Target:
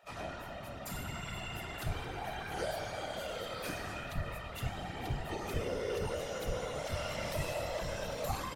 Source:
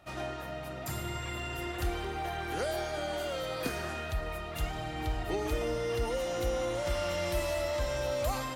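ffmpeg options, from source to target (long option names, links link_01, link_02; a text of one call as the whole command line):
ffmpeg -i in.wav -filter_complex "[0:a]acrossover=split=400[link_01][link_02];[link_01]adelay=30[link_03];[link_03][link_02]amix=inputs=2:normalize=0,afftfilt=real='hypot(re,im)*cos(2*PI*random(0))':imag='hypot(re,im)*sin(2*PI*random(1))':win_size=512:overlap=0.75,volume=2.5dB" out.wav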